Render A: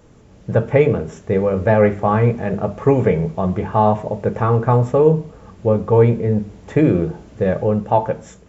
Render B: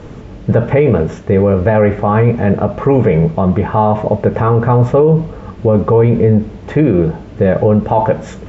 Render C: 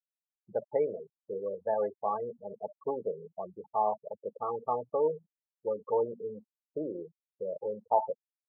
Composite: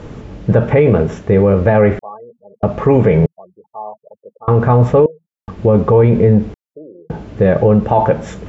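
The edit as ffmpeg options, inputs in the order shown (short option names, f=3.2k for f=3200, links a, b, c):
-filter_complex "[2:a]asplit=4[a][b][c][d];[1:a]asplit=5[e][f][g][h][i];[e]atrim=end=1.992[j];[a]atrim=start=1.988:end=2.632[k];[f]atrim=start=2.628:end=3.262[l];[b]atrim=start=3.258:end=4.482[m];[g]atrim=start=4.478:end=5.062[n];[c]atrim=start=5.058:end=5.482[o];[h]atrim=start=5.478:end=6.542[p];[d]atrim=start=6.538:end=7.102[q];[i]atrim=start=7.098[r];[j][k]acrossfade=d=0.004:c1=hsin:c2=hsin[s];[s][l]acrossfade=d=0.004:c1=hsin:c2=hsin[t];[t][m]acrossfade=d=0.004:c1=hsin:c2=hsin[u];[u][n]acrossfade=d=0.004:c1=hsin:c2=hsin[v];[v][o]acrossfade=d=0.004:c1=hsin:c2=hsin[w];[w][p]acrossfade=d=0.004:c1=hsin:c2=hsin[x];[x][q]acrossfade=d=0.004:c1=hsin:c2=hsin[y];[y][r]acrossfade=d=0.004:c1=hsin:c2=hsin"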